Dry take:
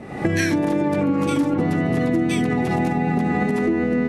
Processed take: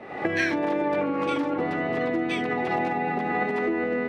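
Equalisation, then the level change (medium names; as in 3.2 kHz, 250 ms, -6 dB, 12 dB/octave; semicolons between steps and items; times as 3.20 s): three-band isolator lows -16 dB, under 360 Hz, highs -21 dB, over 4.2 kHz; 0.0 dB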